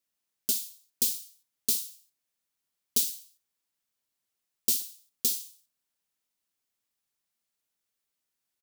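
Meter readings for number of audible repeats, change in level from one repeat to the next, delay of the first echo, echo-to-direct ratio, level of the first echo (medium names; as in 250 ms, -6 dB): 2, -12.5 dB, 63 ms, -16.0 dB, -16.5 dB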